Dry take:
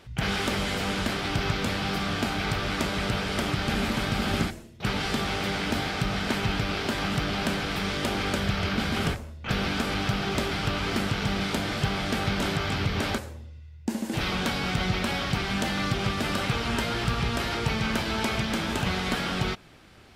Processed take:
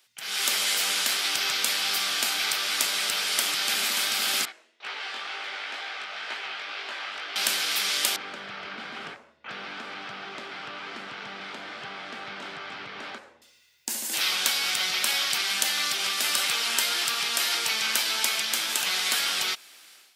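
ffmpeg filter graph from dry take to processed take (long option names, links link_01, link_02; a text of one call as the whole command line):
ffmpeg -i in.wav -filter_complex "[0:a]asettb=1/sr,asplit=3[link_01][link_02][link_03];[link_01]atrim=end=4.454[link_04];[link_02]atrim=start=4.45:end=7.36,asetpts=PTS-STARTPTS,afade=type=in:duration=0.004:curve=qsin,afade=type=out:start_time=2.906:duration=0.004:curve=qsin,highpass=400,lowpass=2300,flanger=delay=17.5:depth=4.4:speed=2.1[link_05];[link_03]atrim=start=7.356[link_06];[link_04][link_05]acrossfade=duration=0.004:curve1=hsin:curve2=qsin[link_07];[link_07][link_06]acrossfade=duration=0.004:curve1=qsin:curve2=hsin,asettb=1/sr,asplit=3[link_08][link_09][link_10];[link_08]atrim=end=8.164[link_11];[link_09]atrim=start=8.16:end=13.42,asetpts=PTS-STARTPTS,afade=type=in:duration=0.004:curve=qsin,afade=type=out:start_time=5.256:duration=0.004:curve=qsin,lowpass=1500,lowshelf=frequency=100:gain=8,acrossover=split=290|3000[link_12][link_13][link_14];[link_13]acompressor=threshold=-35dB:ratio=2:attack=3.2:release=140:knee=2.83:detection=peak[link_15];[link_12][link_15][link_14]amix=inputs=3:normalize=0[link_16];[link_10]atrim=start=13.416[link_17];[link_11][link_16]acrossfade=duration=0.004:curve1=hsin:curve2=qsin[link_18];[link_18][link_17]acrossfade=duration=0.004:curve1=qsin:curve2=hsin,highpass=230,aderivative,dynaudnorm=framelen=240:gausssize=3:maxgain=14dB" out.wav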